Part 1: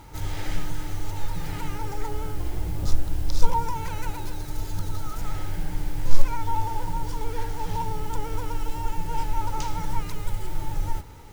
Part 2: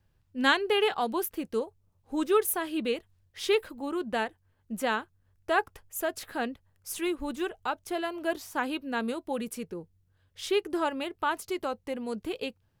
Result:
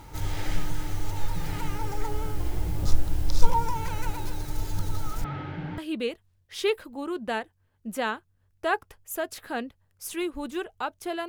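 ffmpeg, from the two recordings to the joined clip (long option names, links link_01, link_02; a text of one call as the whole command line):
ffmpeg -i cue0.wav -i cue1.wav -filter_complex "[0:a]asettb=1/sr,asplit=3[link_01][link_02][link_03];[link_01]atrim=end=5.244[link_04];[link_02]atrim=start=5.24:end=5.78,asetpts=PTS-STARTPTS,afade=type=in:duration=0.004:curve=qsin,afade=type=out:start_time=0.536:duration=0.004:curve=qsin,highpass=130,equalizer=frequency=140:width_type=q:width=4:gain=8,equalizer=frequency=250:width_type=q:width=4:gain=9,equalizer=frequency=1400:width_type=q:width=4:gain=4,lowpass=frequency=3300:width=0.5412,lowpass=frequency=3300:width=1.3066[link_05];[link_03]atrim=start=5.776[link_06];[link_04][link_05]acrossfade=duration=0.004:curve1=hsin:curve2=qsin[link_07];[link_07][link_06]acrossfade=duration=0.004:curve1=qsin:curve2=hsin,apad=whole_dur=11.28,atrim=end=11.28,atrim=end=5.782[link_08];[1:a]atrim=start=2.628:end=8.13[link_09];[link_08][link_09]acrossfade=duration=0.004:curve1=hsin:curve2=hsin" out.wav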